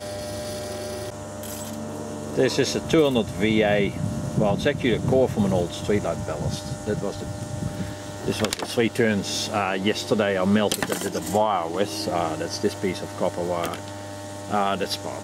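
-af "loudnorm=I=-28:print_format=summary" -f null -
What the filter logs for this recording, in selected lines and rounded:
Input Integrated:    -25.0 LUFS
Input True Peak:      -6.5 dBTP
Input LRA:             5.1 LU
Input Threshold:     -35.2 LUFS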